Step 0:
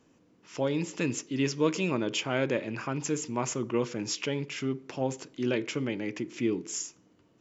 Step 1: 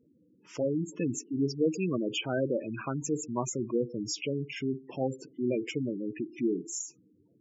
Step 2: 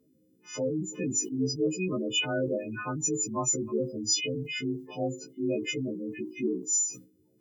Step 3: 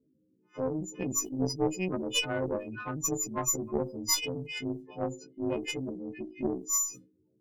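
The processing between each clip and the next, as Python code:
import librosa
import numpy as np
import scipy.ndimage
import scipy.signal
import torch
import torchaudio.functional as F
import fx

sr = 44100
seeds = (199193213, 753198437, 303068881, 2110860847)

y1 = fx.spec_gate(x, sr, threshold_db=-10, keep='strong')
y2 = fx.freq_snap(y1, sr, grid_st=3)
y2 = fx.sustainer(y2, sr, db_per_s=140.0)
y3 = fx.env_lowpass(y2, sr, base_hz=450.0, full_db=-28.5)
y3 = fx.cheby_harmonics(y3, sr, harmonics=(2, 3, 7, 8), levels_db=(-7, -23, -33, -39), full_scale_db=-15.0)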